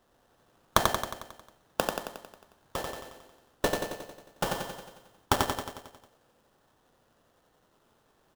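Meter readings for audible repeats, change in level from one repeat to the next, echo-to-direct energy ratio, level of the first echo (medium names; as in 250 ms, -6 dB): 7, -4.5 dB, -1.5 dB, -3.5 dB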